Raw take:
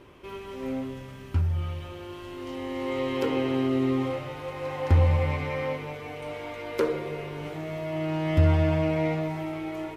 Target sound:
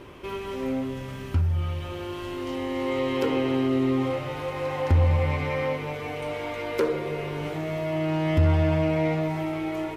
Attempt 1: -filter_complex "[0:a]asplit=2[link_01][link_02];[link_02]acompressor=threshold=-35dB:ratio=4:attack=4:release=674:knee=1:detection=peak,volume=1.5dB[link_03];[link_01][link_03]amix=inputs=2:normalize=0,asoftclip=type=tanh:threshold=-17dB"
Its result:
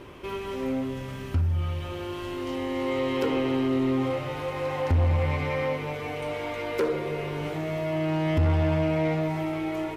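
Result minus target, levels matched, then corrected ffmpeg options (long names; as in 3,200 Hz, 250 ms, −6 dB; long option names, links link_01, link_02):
soft clipping: distortion +8 dB
-filter_complex "[0:a]asplit=2[link_01][link_02];[link_02]acompressor=threshold=-35dB:ratio=4:attack=4:release=674:knee=1:detection=peak,volume=1.5dB[link_03];[link_01][link_03]amix=inputs=2:normalize=0,asoftclip=type=tanh:threshold=-11dB"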